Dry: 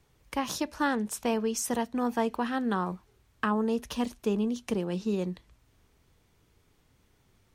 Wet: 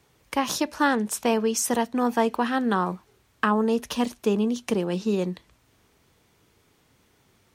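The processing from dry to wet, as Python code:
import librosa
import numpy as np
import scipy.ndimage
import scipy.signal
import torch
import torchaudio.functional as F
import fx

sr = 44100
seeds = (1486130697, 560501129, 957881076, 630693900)

y = fx.highpass(x, sr, hz=170.0, slope=6)
y = y * librosa.db_to_amplitude(6.5)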